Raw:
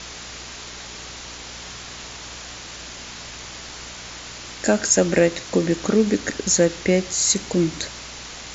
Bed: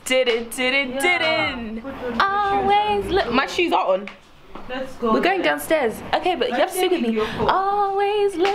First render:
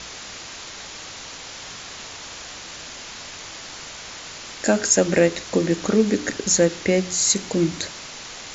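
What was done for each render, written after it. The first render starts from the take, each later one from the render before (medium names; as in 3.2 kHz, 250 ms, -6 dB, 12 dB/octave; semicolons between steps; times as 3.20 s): de-hum 60 Hz, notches 7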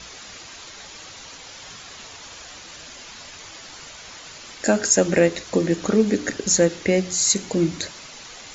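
noise reduction 7 dB, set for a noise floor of -38 dBFS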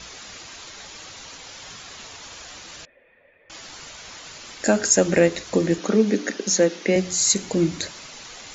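2.85–3.50 s: cascade formant filter e; 5.78–6.96 s: Chebyshev band-pass 190–6400 Hz, order 4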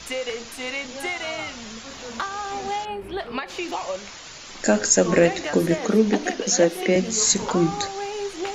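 add bed -10.5 dB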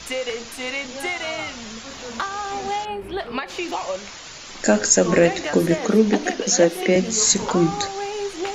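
trim +2 dB; peak limiter -3 dBFS, peak gain reduction 2 dB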